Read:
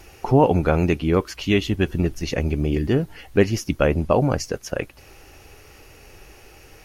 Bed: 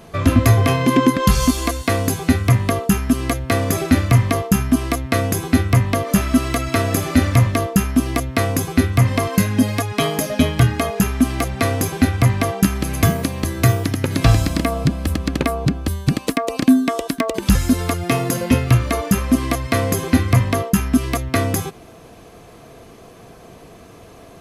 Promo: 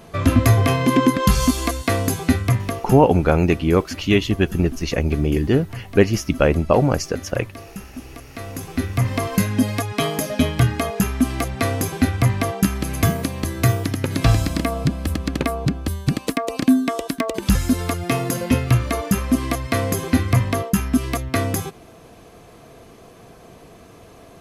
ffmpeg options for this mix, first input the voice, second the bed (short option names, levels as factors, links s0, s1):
-filter_complex "[0:a]adelay=2600,volume=1.33[s0];[1:a]volume=5.62,afade=t=out:st=2.27:d=0.84:silence=0.133352,afade=t=in:st=8.29:d=1.07:silence=0.149624[s1];[s0][s1]amix=inputs=2:normalize=0"